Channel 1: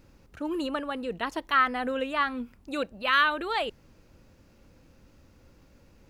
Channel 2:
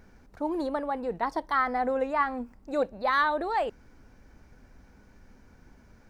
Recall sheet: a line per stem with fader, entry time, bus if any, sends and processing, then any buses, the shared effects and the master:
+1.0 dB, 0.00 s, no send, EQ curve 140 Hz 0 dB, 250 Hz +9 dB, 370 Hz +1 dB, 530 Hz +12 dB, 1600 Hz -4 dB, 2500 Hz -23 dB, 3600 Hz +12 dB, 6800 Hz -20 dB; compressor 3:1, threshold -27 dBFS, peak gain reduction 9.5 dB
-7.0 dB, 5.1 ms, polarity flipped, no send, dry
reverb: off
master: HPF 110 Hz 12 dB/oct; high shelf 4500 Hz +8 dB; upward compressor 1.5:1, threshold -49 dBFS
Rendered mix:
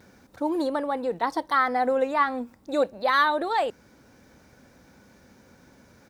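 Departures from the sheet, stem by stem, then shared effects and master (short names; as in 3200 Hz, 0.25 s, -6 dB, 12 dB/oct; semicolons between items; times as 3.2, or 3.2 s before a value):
stem 1 +1.0 dB -> -9.5 dB; stem 2 -7.0 dB -> +2.5 dB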